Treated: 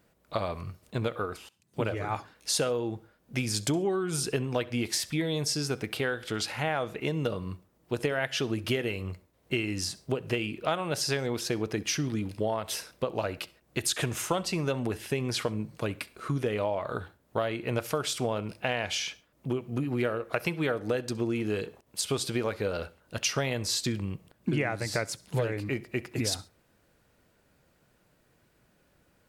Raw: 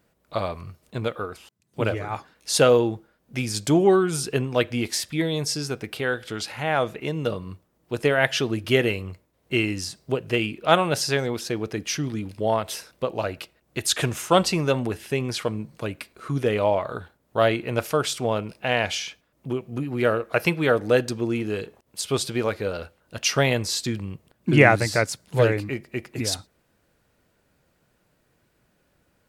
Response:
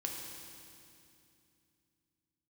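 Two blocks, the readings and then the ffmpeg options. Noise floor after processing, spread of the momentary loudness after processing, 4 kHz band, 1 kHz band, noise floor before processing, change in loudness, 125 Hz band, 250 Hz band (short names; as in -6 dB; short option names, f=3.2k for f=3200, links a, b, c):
-68 dBFS, 8 LU, -4.5 dB, -8.5 dB, -68 dBFS, -7.0 dB, -5.5 dB, -6.0 dB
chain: -filter_complex "[0:a]acompressor=threshold=-25dB:ratio=12,asplit=2[a][b];[1:a]atrim=start_sample=2205,atrim=end_sample=3528,adelay=66[c];[b][c]afir=irnorm=-1:irlink=0,volume=-20.5dB[d];[a][d]amix=inputs=2:normalize=0"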